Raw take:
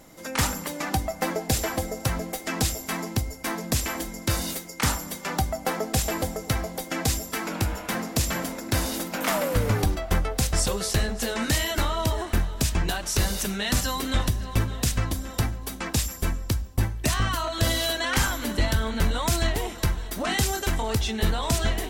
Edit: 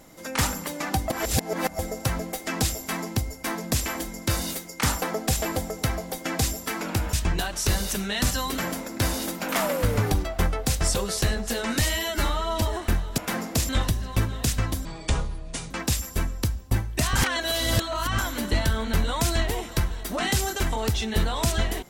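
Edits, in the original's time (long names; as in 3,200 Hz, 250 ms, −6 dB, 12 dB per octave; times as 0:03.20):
0:01.10–0:01.79: reverse
0:05.02–0:05.68: remove
0:07.79–0:08.30: swap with 0:12.63–0:14.08
0:11.53–0:12.07: time-stretch 1.5×
0:15.24–0:15.77: play speed 62%
0:17.22–0:18.25: reverse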